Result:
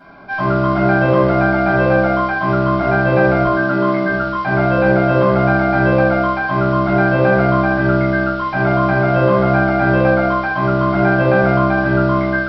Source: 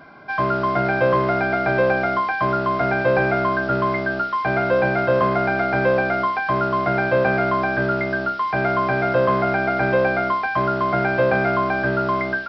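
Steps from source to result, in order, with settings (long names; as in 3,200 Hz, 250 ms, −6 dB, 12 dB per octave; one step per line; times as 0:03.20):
0:03.44–0:04.05: high-pass filter 170 Hz 24 dB per octave
rectangular room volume 610 cubic metres, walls furnished, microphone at 7.8 metres
level −6.5 dB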